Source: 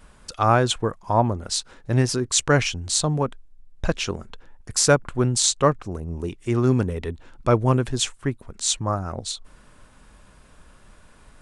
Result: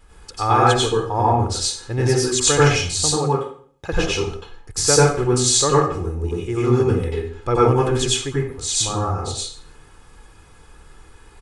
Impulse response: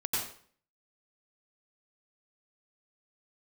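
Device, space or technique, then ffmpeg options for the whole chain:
microphone above a desk: -filter_complex "[0:a]aecho=1:1:2.4:0.59[link_01];[1:a]atrim=start_sample=2205[link_02];[link_01][link_02]afir=irnorm=-1:irlink=0,asettb=1/sr,asplit=3[link_03][link_04][link_05];[link_03]atrim=end=3.164[link_06];[link_04]atrim=start=3.16:end=3.93,asetpts=PTS-STARTPTS,afade=type=in:duration=0.004:curve=qsin,afade=type=out:start_time=0.766:duration=0.004:curve=qsin,highpass=130[link_07];[link_05]atrim=start=3.926[link_08];[link_06][link_07]acrossfade=duration=0.004:curve1=hsin:curve2=qsin[link_09];[link_09][link_08]acrossfade=duration=0.004:curve1=qsin:curve2=hsin,volume=-3dB"

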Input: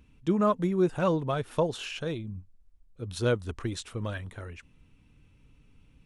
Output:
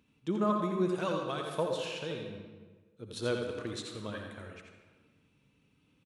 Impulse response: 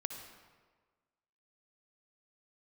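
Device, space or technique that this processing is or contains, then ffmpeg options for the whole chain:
PA in a hall: -filter_complex "[0:a]asettb=1/sr,asplit=3[link_01][link_02][link_03];[link_01]atrim=end=0.894[link_04];[link_02]atrim=start=0.89:end=1.55,asetpts=PTS-STARTPTS,afade=type=in:duration=0.004:curve=qsin,afade=type=out:start_time=0.656:duration=0.004:curve=qsin,tiltshelf=frequency=1300:gain=-5[link_05];[link_03]atrim=start=1.546[link_06];[link_04][link_05]acrossfade=duration=0.004:curve1=hsin:curve2=qsin[link_07];[link_07][link_06]acrossfade=duration=0.004:curve1=qsin:curve2=hsin,highpass=150,equalizer=frequency=3900:width_type=o:width=0.48:gain=4,aecho=1:1:85:0.473[link_08];[1:a]atrim=start_sample=2205[link_09];[link_08][link_09]afir=irnorm=-1:irlink=0,volume=-4.5dB"

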